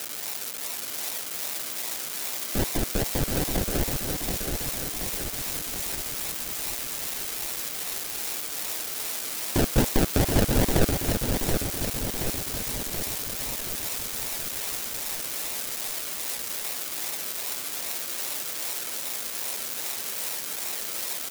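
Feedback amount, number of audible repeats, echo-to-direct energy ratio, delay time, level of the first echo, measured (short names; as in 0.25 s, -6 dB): 57%, 7, -3.5 dB, 0.727 s, -5.0 dB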